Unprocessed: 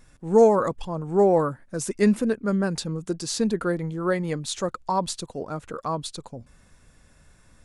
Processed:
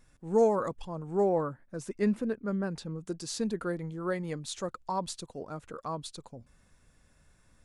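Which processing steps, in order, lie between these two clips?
1.29–3.07 high shelf 4600 Hz -11 dB; gain -8 dB

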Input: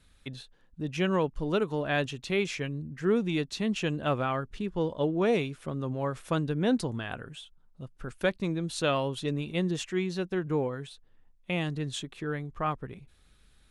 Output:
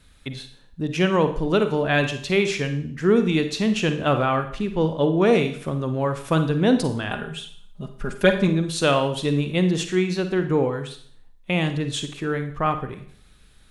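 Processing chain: 7.1–8.48 comb 4.9 ms, depth 82%; Schroeder reverb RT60 0.56 s, DRR 8 dB; gain +7.5 dB

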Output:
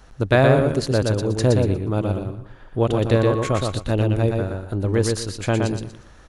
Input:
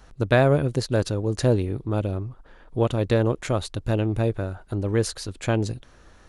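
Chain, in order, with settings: 3.14–3.58 whine 1100 Hz -36 dBFS; feedback echo 0.119 s, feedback 26%, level -3.5 dB; gain +2 dB

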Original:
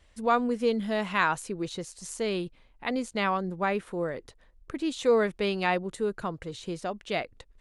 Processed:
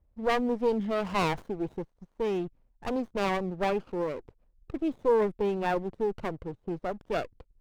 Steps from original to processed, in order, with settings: formant sharpening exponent 1.5; low-pass opened by the level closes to 750 Hz, open at -20.5 dBFS; 4.88–6.71 band shelf 3500 Hz -9 dB 2.5 oct; sample leveller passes 1; running maximum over 17 samples; gain -3 dB

